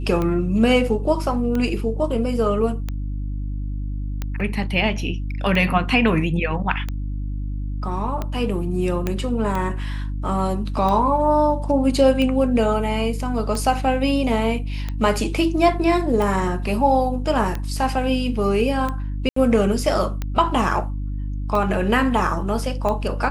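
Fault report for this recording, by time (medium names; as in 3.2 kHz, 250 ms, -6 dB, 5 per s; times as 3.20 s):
hum 50 Hz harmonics 6 -26 dBFS
tick 45 rpm -13 dBFS
9.07 s: pop -10 dBFS
19.29–19.36 s: dropout 74 ms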